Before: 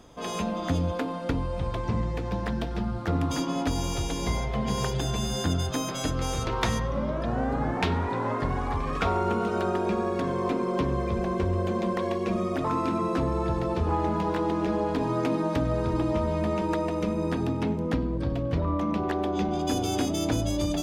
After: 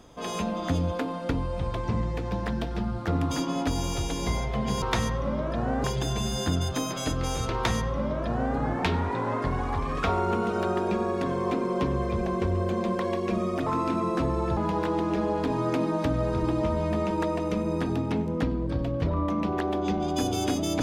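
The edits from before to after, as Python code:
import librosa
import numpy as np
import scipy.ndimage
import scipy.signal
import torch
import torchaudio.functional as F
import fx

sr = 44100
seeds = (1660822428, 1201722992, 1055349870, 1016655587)

y = fx.edit(x, sr, fx.duplicate(start_s=6.52, length_s=1.02, to_s=4.82),
    fx.cut(start_s=13.55, length_s=0.53), tone=tone)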